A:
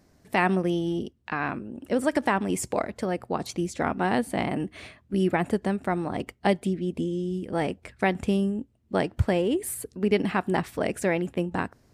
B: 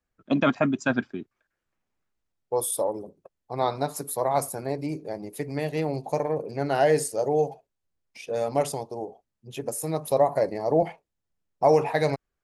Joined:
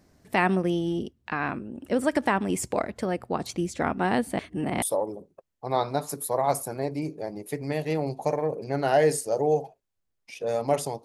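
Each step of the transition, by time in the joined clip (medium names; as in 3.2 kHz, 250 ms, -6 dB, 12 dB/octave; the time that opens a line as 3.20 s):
A
4.39–4.82 s: reverse
4.82 s: go over to B from 2.69 s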